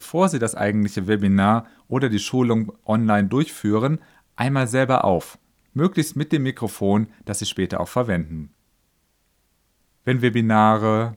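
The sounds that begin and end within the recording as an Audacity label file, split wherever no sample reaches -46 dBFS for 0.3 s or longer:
5.750000	8.480000	sound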